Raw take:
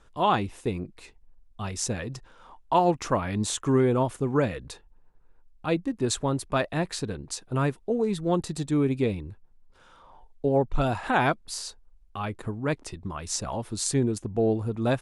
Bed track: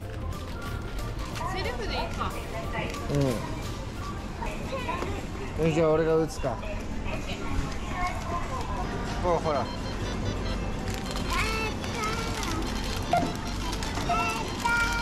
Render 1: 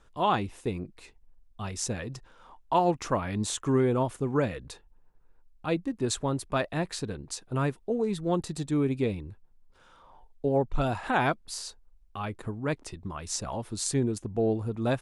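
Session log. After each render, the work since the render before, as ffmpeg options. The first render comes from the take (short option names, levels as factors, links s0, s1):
-af "volume=0.75"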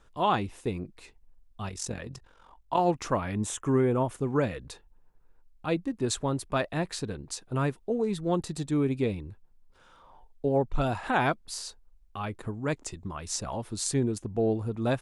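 -filter_complex "[0:a]asettb=1/sr,asplit=3[s0][s1][s2];[s0]atrim=end=1.694[s3];[s1]atrim=start=1.69:end=2.79,asetpts=PTS-STARTPTS,afade=t=in:d=0.004:c=qsin,afade=t=out:st=1.096:d=0.004:c=qsin,tremolo=f=45:d=0.71[s4];[s2]atrim=start=2.786[s5];[s3][s4]acrossfade=d=0.004:c1=hsin:c2=qsin[s6];[s6][s5]acrossfade=d=0.004:c1=qsin:c2=hsin,asettb=1/sr,asplit=3[s7][s8][s9];[s7]atrim=end=3.324[s10];[s8]atrim=start=3.32:end=4.11,asetpts=PTS-STARTPTS,afade=t=in:d=0.004:c=qsin,afade=t=out:st=0.786:d=0.004:c=qsin,equalizer=f=4300:w=2.8:g=-14.5[s11];[s9]atrim=start=4.106[s12];[s10][s11]acrossfade=d=0.004:c1=hsin:c2=qsin[s13];[s13][s12]acrossfade=d=0.004:c1=qsin:c2=hsin,asettb=1/sr,asplit=3[s14][s15][s16];[s14]atrim=end=12.544[s17];[s15]atrim=start=12.54:end=13.04,asetpts=PTS-STARTPTS,afade=t=in:d=0.004:c=qsin,afade=t=out:st=0.496:d=0.004:c=qsin,equalizer=f=7100:w=3.1:g=10[s18];[s16]atrim=start=13.036[s19];[s17][s18]acrossfade=d=0.004:c1=hsin:c2=qsin[s20];[s20][s19]acrossfade=d=0.004:c1=qsin:c2=hsin"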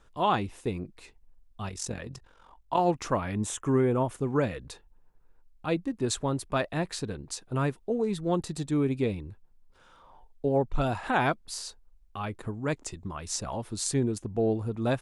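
-af anull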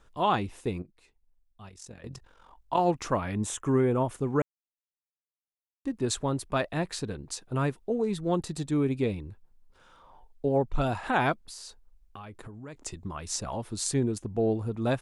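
-filter_complex "[0:a]asplit=3[s0][s1][s2];[s0]afade=t=out:st=11.47:d=0.02[s3];[s1]acompressor=threshold=0.01:ratio=6:attack=3.2:release=140:knee=1:detection=peak,afade=t=in:st=11.47:d=0.02,afade=t=out:st=12.74:d=0.02[s4];[s2]afade=t=in:st=12.74:d=0.02[s5];[s3][s4][s5]amix=inputs=3:normalize=0,asplit=5[s6][s7][s8][s9][s10];[s6]atrim=end=0.822[s11];[s7]atrim=start=0.818:end=2.042,asetpts=PTS-STARTPTS,volume=0.266[s12];[s8]atrim=start=2.038:end=4.42,asetpts=PTS-STARTPTS,afade=t=out:st=2.378:d=0.004:c=hsin[s13];[s9]atrim=start=4.42:end=5.85,asetpts=PTS-STARTPTS,volume=0[s14];[s10]atrim=start=5.85,asetpts=PTS-STARTPTS,afade=t=in:d=0.004:c=hsin[s15];[s11][s12]acrossfade=d=0.004:c1=hsin:c2=hsin[s16];[s13][s14][s15]concat=n=3:v=0:a=1[s17];[s16][s17]acrossfade=d=0.004:c1=hsin:c2=hsin"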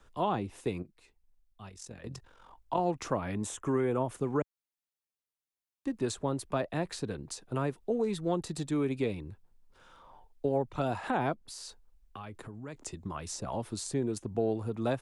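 -filter_complex "[0:a]acrossover=split=81|310|830[s0][s1][s2][s3];[s0]acompressor=threshold=0.00141:ratio=4[s4];[s1]acompressor=threshold=0.0178:ratio=4[s5];[s2]acompressor=threshold=0.0355:ratio=4[s6];[s3]acompressor=threshold=0.0112:ratio=4[s7];[s4][s5][s6][s7]amix=inputs=4:normalize=0"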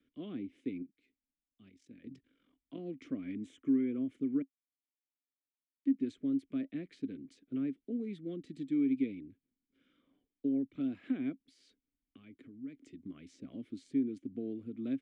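-filter_complex "[0:a]asplit=3[s0][s1][s2];[s0]bandpass=f=270:t=q:w=8,volume=1[s3];[s1]bandpass=f=2290:t=q:w=8,volume=0.501[s4];[s2]bandpass=f=3010:t=q:w=8,volume=0.355[s5];[s3][s4][s5]amix=inputs=3:normalize=0,asplit=2[s6][s7];[s7]adynamicsmooth=sensitivity=1:basefreq=2000,volume=0.944[s8];[s6][s8]amix=inputs=2:normalize=0"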